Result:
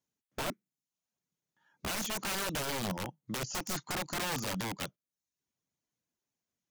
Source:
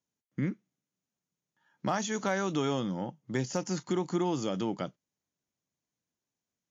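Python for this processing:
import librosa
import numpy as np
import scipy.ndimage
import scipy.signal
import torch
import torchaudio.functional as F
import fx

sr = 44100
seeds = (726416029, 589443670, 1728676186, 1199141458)

y = fx.dereverb_blind(x, sr, rt60_s=0.55)
y = (np.mod(10.0 ** (29.5 / 20.0) * y + 1.0, 2.0) - 1.0) / 10.0 ** (29.5 / 20.0)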